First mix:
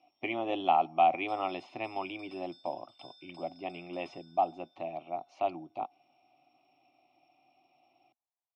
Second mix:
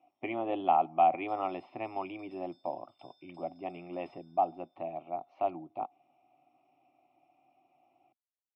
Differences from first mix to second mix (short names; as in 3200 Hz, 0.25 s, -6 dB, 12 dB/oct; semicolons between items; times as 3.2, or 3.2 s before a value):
speech: add LPF 1900 Hz 12 dB/oct; background -11.0 dB